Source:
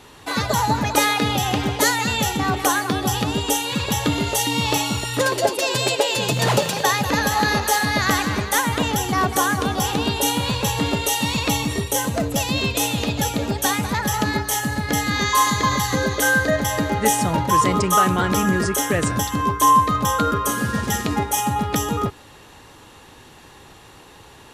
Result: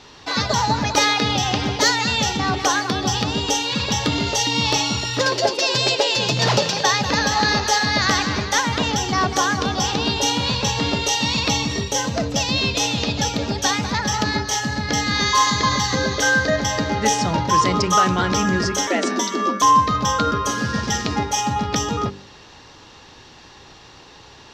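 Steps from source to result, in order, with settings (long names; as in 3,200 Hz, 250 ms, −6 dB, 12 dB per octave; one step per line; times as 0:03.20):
high shelf with overshoot 7,600 Hz −14 dB, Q 3
hard clipping −6 dBFS, distortion −38 dB
hum removal 48.83 Hz, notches 11
0:18.87–0:19.62: frequency shifter +130 Hz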